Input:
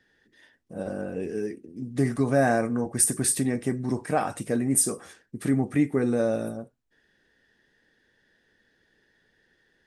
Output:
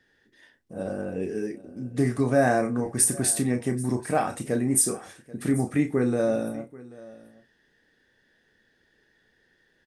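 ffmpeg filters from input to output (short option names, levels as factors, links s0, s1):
-filter_complex "[0:a]asplit=2[s0][s1];[s1]adelay=32,volume=0.398[s2];[s0][s2]amix=inputs=2:normalize=0,aecho=1:1:785:0.0944"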